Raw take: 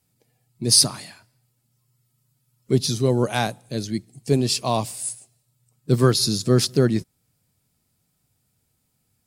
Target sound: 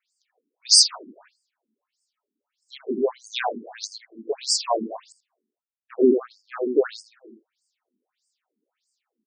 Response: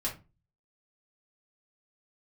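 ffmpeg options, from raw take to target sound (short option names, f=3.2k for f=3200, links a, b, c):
-filter_complex "[0:a]asettb=1/sr,asplit=3[a][b][c];[a]atrim=end=5.044[d];[b]atrim=start=5.04:end=6.64,asetpts=PTS-STARTPTS,afade=t=in:d=0.004:c=qsin,afade=t=out:st=1.596:d=0.004:c=qsin,adynamicsmooth=sensitivity=0.5:basefreq=540[e];[c]atrim=start=6.636[f];[d][e]acrossfade=d=0.004:c1=hsin:c2=qsin[g];[g][f]acrossfade=d=0.004:c1=qsin:c2=hsin,asplit=2[h][i];[i]adelay=81,lowpass=f=2.4k:p=1,volume=-5dB,asplit=2[j][k];[k]adelay=81,lowpass=f=2.4k:p=1,volume=0.49,asplit=2[l][m];[m]adelay=81,lowpass=f=2.4k:p=1,volume=0.49,asplit=2[n][o];[o]adelay=81,lowpass=f=2.4k:p=1,volume=0.49,asplit=2[p][q];[q]adelay=81,lowpass=f=2.4k:p=1,volume=0.49,asplit=2[r][s];[s]adelay=81,lowpass=f=2.4k:p=1,volume=0.49[t];[h][j][l][n][p][r][t]amix=inputs=7:normalize=0,afftfilt=real='re*between(b*sr/1024,290*pow(6600/290,0.5+0.5*sin(2*PI*1.6*pts/sr))/1.41,290*pow(6600/290,0.5+0.5*sin(2*PI*1.6*pts/sr))*1.41)':imag='im*between(b*sr/1024,290*pow(6600/290,0.5+0.5*sin(2*PI*1.6*pts/sr))/1.41,290*pow(6600/290,0.5+0.5*sin(2*PI*1.6*pts/sr))*1.41)':win_size=1024:overlap=0.75,volume=3.5dB"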